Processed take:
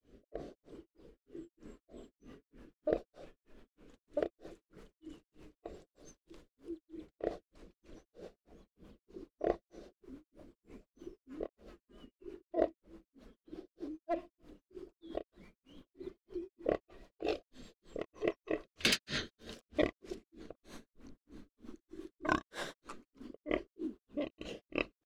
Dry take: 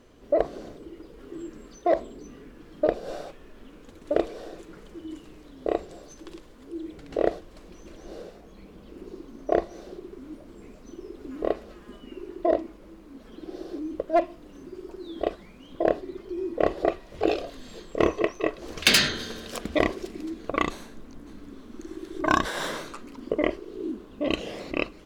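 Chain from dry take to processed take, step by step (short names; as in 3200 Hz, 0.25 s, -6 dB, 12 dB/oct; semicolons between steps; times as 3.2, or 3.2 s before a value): rotary speaker horn 1 Hz, later 7.5 Hz, at 1.71; grains 0.247 s, grains 3.2/s, pitch spread up and down by 0 st; gain -5.5 dB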